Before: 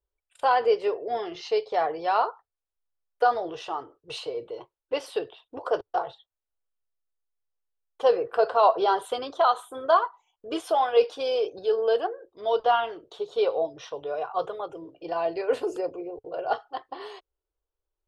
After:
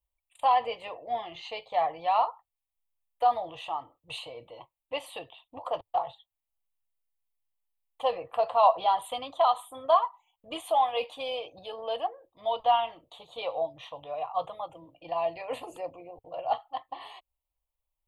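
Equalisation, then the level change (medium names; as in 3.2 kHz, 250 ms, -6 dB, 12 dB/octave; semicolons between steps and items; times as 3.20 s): treble shelf 6.3 kHz +5.5 dB; static phaser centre 1.5 kHz, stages 6; 0.0 dB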